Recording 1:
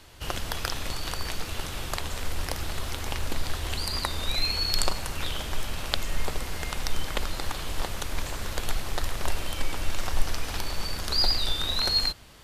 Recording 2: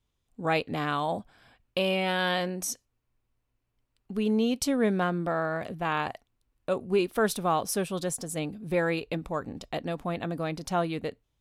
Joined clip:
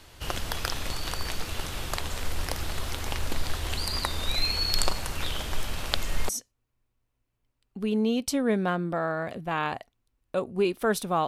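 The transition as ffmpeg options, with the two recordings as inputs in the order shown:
ffmpeg -i cue0.wav -i cue1.wav -filter_complex "[0:a]apad=whole_dur=11.27,atrim=end=11.27,atrim=end=6.292[link_01];[1:a]atrim=start=2.628:end=7.61[link_02];[link_01][link_02]acrossfade=duration=0.004:curve1=hsin:curve2=hsin" out.wav

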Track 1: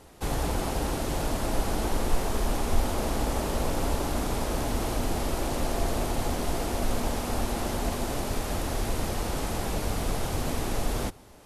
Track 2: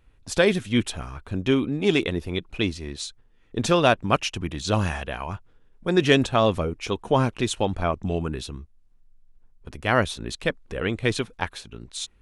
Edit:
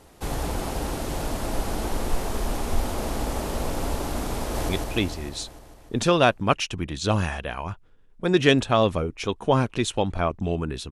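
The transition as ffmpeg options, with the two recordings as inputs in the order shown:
ffmpeg -i cue0.wav -i cue1.wav -filter_complex "[0:a]apad=whole_dur=10.91,atrim=end=10.91,atrim=end=4.692[link_01];[1:a]atrim=start=2.318:end=8.54[link_02];[link_01][link_02]acrossfade=duration=0.004:curve1=hsin:curve2=hsin,asplit=2[link_03][link_04];[link_04]afade=type=in:start_time=4.39:duration=0.01,afade=type=out:start_time=4.69:duration=0.01,aecho=0:1:150|300|450|600|750|900|1050|1200|1350|1500|1650|1800:0.794328|0.55603|0.389221|0.272455|0.190718|0.133503|0.0934519|0.0654163|0.0457914|0.032054|0.0224378|0.0157065[link_05];[link_03][link_05]amix=inputs=2:normalize=0" out.wav

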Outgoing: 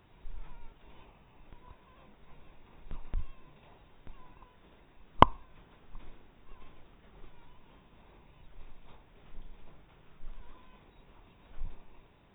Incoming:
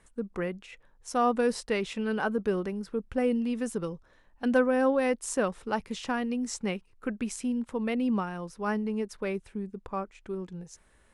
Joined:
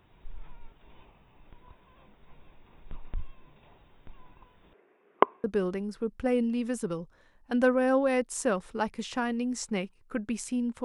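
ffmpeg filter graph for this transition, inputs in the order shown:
ffmpeg -i cue0.wav -i cue1.wav -filter_complex "[0:a]asettb=1/sr,asplit=3[link_01][link_02][link_03];[link_01]atrim=end=4.734[link_04];[link_02]atrim=start=4.73:end=5.44,asetpts=PTS-STARTPTS,afade=type=in:duration=0.004:curve=qsin,afade=type=out:start_time=0.706:duration=0.004:curve=qsin,highpass=frequency=260:width=0.5412,highpass=frequency=260:width=1.3066,equalizer=frequency=270:width_type=q:width=4:gain=-6,equalizer=frequency=410:width_type=q:width=4:gain=9,equalizer=frequency=910:width_type=q:width=4:gain=-7,lowpass=frequency=2300:width=0.5412,lowpass=frequency=2300:width=1.3066[link_05];[link_03]atrim=start=5.436[link_06];[link_04][link_05]acrossfade=duration=0.004:curve1=hsin:curve2=qsin[link_07];[link_07][link_06]acrossfade=duration=0.004:curve1=qsin:curve2=hsin,apad=whole_dur=10.84,atrim=end=10.84,atrim=end=5.442[link_08];[1:a]atrim=start=2.358:end=7.76[link_09];[link_08][link_09]acrossfade=duration=0.004:curve1=hsin:curve2=hsin" out.wav

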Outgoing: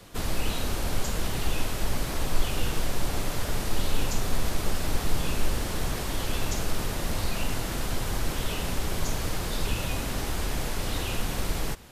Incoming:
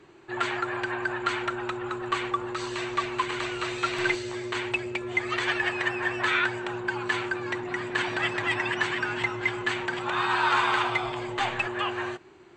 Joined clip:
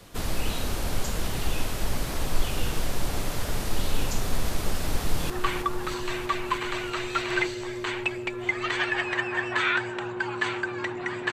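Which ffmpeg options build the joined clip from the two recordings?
ffmpeg -i cue0.wav -i cue1.wav -filter_complex "[0:a]apad=whole_dur=11.32,atrim=end=11.32,atrim=end=5.302[link_01];[1:a]atrim=start=1.978:end=8[link_02];[link_01][link_02]acrossfade=duration=0.004:curve1=hsin:curve2=hsin,asplit=2[link_03][link_04];[link_04]afade=type=in:start_time=4.87:duration=0.01,afade=type=out:start_time=5.3:duration=0.01,aecho=0:1:320|640|960|1280|1600|1920|2240|2560|2880|3200|3520|3840:0.421697|0.316272|0.237204|0.177903|0.133427|0.100071|0.0750529|0.0562897|0.0422173|0.0316629|0.0237472|0.0178104[link_05];[link_03][link_05]amix=inputs=2:normalize=0" out.wav

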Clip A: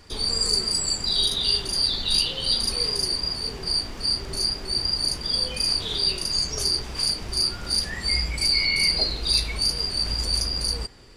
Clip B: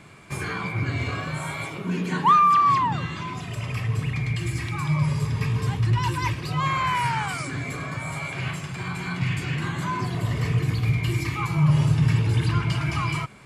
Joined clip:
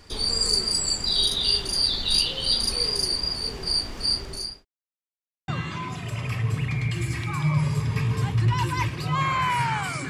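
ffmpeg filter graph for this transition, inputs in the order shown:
ffmpeg -i cue0.wav -i cue1.wav -filter_complex "[0:a]apad=whole_dur=10.09,atrim=end=10.09,asplit=2[link_01][link_02];[link_01]atrim=end=4.65,asetpts=PTS-STARTPTS,afade=type=out:start_time=4.14:duration=0.51[link_03];[link_02]atrim=start=4.65:end=5.48,asetpts=PTS-STARTPTS,volume=0[link_04];[1:a]atrim=start=2.93:end=7.54,asetpts=PTS-STARTPTS,afade=type=in:duration=0.004:curve=hsin[link_05];[link_03][link_04][link_05]concat=n=3:v=0:a=1" out.wav

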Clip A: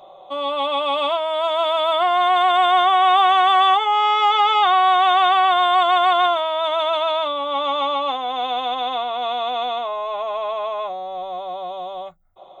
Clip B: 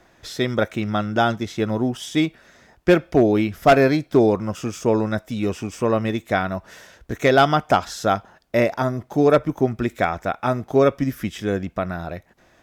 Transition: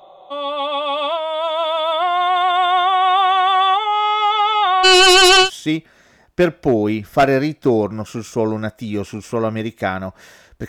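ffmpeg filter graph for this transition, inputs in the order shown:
ffmpeg -i cue0.wav -i cue1.wav -filter_complex "[0:a]asplit=3[link_01][link_02][link_03];[link_01]afade=type=out:start_time=4.83:duration=0.02[link_04];[link_02]aeval=exprs='0.473*sin(PI/2*3.98*val(0)/0.473)':channel_layout=same,afade=type=in:start_time=4.83:duration=0.02,afade=type=out:start_time=5.5:duration=0.02[link_05];[link_03]afade=type=in:start_time=5.5:duration=0.02[link_06];[link_04][link_05][link_06]amix=inputs=3:normalize=0,apad=whole_dur=10.68,atrim=end=10.68,atrim=end=5.5,asetpts=PTS-STARTPTS[link_07];[1:a]atrim=start=1.89:end=7.17,asetpts=PTS-STARTPTS[link_08];[link_07][link_08]acrossfade=duration=0.1:curve1=tri:curve2=tri" out.wav

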